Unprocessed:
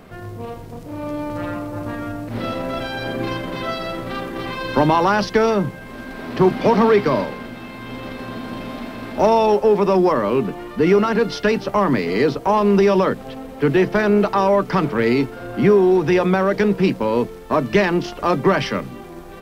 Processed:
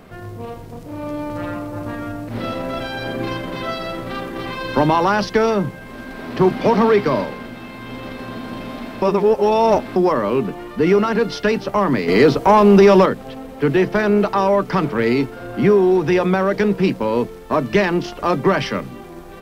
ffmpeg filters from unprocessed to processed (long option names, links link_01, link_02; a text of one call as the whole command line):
ffmpeg -i in.wav -filter_complex "[0:a]asettb=1/sr,asplit=3[link_01][link_02][link_03];[link_01]atrim=end=12.084[link_04];[link_02]atrim=start=12.08:end=13.06,asetpts=PTS-STARTPTS,afade=type=in:duration=0.004:curve=qsin,afade=type=out:start_time=0.976:duration=0.004:curve=qsin,acontrast=65[link_05];[link_03]atrim=start=13.056[link_06];[link_04][link_05]acrossfade=duration=0.004:curve1=hsin:curve2=qsin[link_07];[link_07][link_06]acrossfade=duration=0.004:curve1=qsin:curve2=hsin,asplit=3[link_08][link_09][link_10];[link_08]atrim=end=9.022[link_11];[link_09]atrim=start=9.018:end=9.962,asetpts=PTS-STARTPTS,areverse[link_12];[link_10]atrim=start=9.958[link_13];[link_11][link_12]acrossfade=duration=0.004:curve1=hsin:curve2=hsin[link_14];[link_14][link_13]acrossfade=duration=0.004:curve1=hsin:curve2=hsin" out.wav